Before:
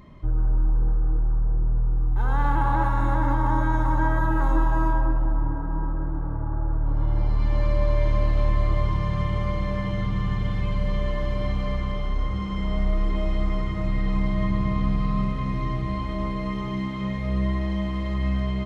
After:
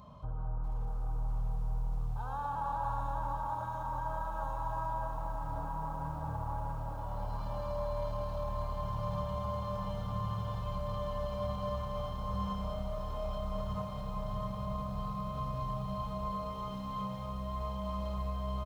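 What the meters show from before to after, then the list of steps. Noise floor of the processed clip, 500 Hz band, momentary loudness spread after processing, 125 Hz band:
−39 dBFS, −6.5 dB, 3 LU, −12.5 dB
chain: high-shelf EQ 3,400 Hz −5 dB
brickwall limiter −21 dBFS, peak gain reduction 10 dB
low-shelf EQ 200 Hz −8.5 dB
speech leveller within 4 dB 2 s
high-pass filter 52 Hz 12 dB per octave
phaser with its sweep stopped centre 820 Hz, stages 4
single-tap delay 228 ms −13 dB
feedback echo at a low word length 641 ms, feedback 80%, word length 10 bits, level −9.5 dB

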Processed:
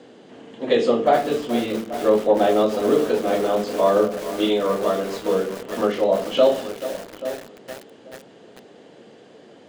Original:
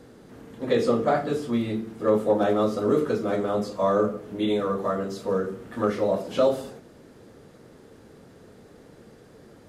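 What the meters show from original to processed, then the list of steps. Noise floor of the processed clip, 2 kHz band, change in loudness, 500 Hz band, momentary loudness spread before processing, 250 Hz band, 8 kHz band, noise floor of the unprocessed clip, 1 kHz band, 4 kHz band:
−48 dBFS, +5.0 dB, +4.0 dB, +5.0 dB, 7 LU, +2.0 dB, can't be measured, −51 dBFS, +5.5 dB, +9.0 dB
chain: loudspeaker in its box 230–7,500 Hz, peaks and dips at 690 Hz +4 dB, 1,300 Hz −5 dB, 3,000 Hz +9 dB, 5,600 Hz −4 dB
feedback echo with a low-pass in the loop 833 ms, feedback 19%, low-pass 1,100 Hz, level −14 dB
feedback echo at a low word length 432 ms, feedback 80%, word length 5 bits, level −12 dB
level +4 dB

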